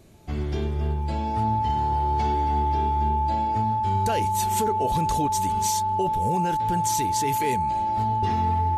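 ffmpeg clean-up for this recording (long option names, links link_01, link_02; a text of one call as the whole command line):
ffmpeg -i in.wav -af "bandreject=frequency=870:width=30" out.wav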